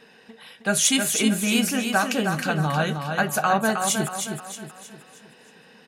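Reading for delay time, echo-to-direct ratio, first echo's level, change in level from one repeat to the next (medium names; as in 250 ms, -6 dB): 314 ms, -5.0 dB, -6.0 dB, -7.5 dB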